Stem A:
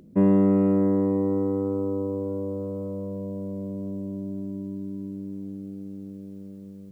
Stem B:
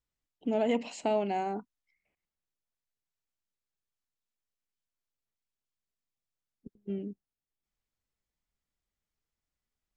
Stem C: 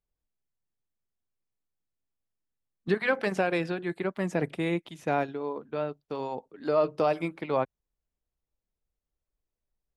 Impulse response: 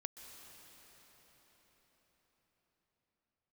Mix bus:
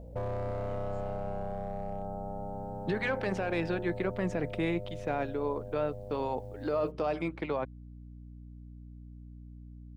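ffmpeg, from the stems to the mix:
-filter_complex "[0:a]highpass=frequency=44:poles=1,asoftclip=type=hard:threshold=-21dB,aeval=exprs='val(0)*sin(2*PI*310*n/s)':channel_layout=same,volume=1.5dB[link_01];[1:a]volume=-15.5dB[link_02];[2:a]adynamicsmooth=sensitivity=3:basefreq=6100,highpass=120,alimiter=limit=-23.5dB:level=0:latency=1:release=21,volume=1dB,asplit=2[link_03][link_04];[link_04]apad=whole_len=439664[link_05];[link_02][link_05]sidechaincompress=threshold=-40dB:ratio=8:attack=16:release=390[link_06];[link_01][link_06]amix=inputs=2:normalize=0,aeval=exprs='val(0)+0.00501*(sin(2*PI*60*n/s)+sin(2*PI*2*60*n/s)/2+sin(2*PI*3*60*n/s)/3+sin(2*PI*4*60*n/s)/4+sin(2*PI*5*60*n/s)/5)':channel_layout=same,acompressor=threshold=-40dB:ratio=2,volume=0dB[link_07];[link_03][link_07]amix=inputs=2:normalize=0"

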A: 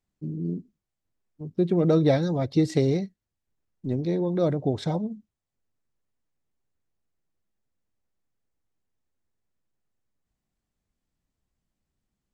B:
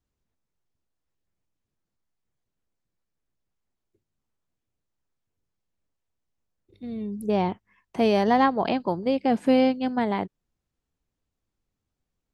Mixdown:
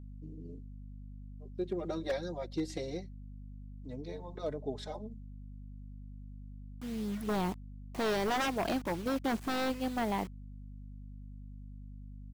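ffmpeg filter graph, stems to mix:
ffmpeg -i stem1.wav -i stem2.wav -filter_complex "[0:a]bass=frequency=250:gain=-14,treble=frequency=4000:gain=2,asplit=2[link_01][link_02];[link_02]adelay=4.1,afreqshift=-0.26[link_03];[link_01][link_03]amix=inputs=2:normalize=1,volume=2.5dB[link_04];[1:a]acrusher=bits=6:mix=0:aa=0.000001,aphaser=in_gain=1:out_gain=1:delay=3.6:decay=0.22:speed=0.28:type=triangular,aeval=exprs='val(0)+0.0112*(sin(2*PI*50*n/s)+sin(2*PI*2*50*n/s)/2+sin(2*PI*3*50*n/s)/3+sin(2*PI*4*50*n/s)/4+sin(2*PI*5*50*n/s)/5)':channel_layout=same,volume=-6.5dB,asplit=2[link_05][link_06];[link_06]apad=whole_len=544120[link_07];[link_04][link_07]sidechaingate=range=-9dB:threshold=-36dB:ratio=16:detection=peak[link_08];[link_08][link_05]amix=inputs=2:normalize=0,aeval=exprs='0.0531*(abs(mod(val(0)/0.0531+3,4)-2)-1)':channel_layout=same" out.wav

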